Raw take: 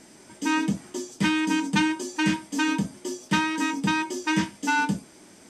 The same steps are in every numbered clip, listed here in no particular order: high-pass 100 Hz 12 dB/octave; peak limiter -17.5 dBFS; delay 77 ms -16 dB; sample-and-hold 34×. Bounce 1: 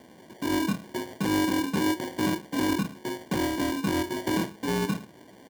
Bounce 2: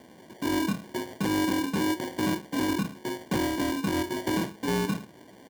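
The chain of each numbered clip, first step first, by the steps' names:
peak limiter > delay > sample-and-hold > high-pass; delay > sample-and-hold > high-pass > peak limiter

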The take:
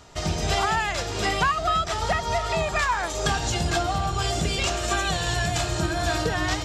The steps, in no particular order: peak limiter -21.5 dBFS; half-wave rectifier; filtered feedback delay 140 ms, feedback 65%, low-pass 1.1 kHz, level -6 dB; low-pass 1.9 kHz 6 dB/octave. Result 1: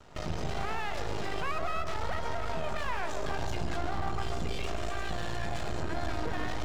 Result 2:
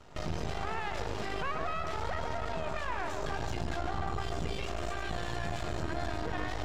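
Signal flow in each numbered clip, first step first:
peak limiter > low-pass > half-wave rectifier > filtered feedback delay; filtered feedback delay > peak limiter > half-wave rectifier > low-pass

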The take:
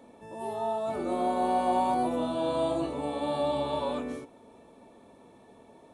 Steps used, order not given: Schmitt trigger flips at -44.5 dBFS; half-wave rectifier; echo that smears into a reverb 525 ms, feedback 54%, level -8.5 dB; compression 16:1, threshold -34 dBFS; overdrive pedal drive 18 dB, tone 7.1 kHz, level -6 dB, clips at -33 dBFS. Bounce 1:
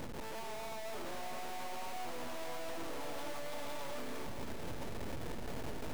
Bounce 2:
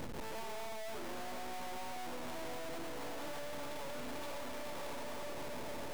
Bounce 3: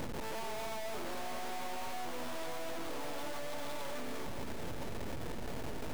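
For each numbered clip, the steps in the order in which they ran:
compression > overdrive pedal > Schmitt trigger > half-wave rectifier > echo that smears into a reverb; echo that smears into a reverb > overdrive pedal > compression > Schmitt trigger > half-wave rectifier; overdrive pedal > Schmitt trigger > half-wave rectifier > echo that smears into a reverb > compression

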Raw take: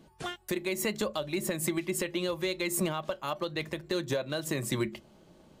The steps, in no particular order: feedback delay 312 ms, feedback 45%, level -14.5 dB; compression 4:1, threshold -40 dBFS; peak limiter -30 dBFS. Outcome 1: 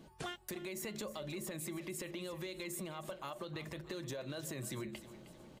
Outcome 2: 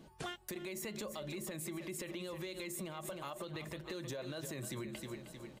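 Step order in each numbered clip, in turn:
peak limiter > compression > feedback delay; feedback delay > peak limiter > compression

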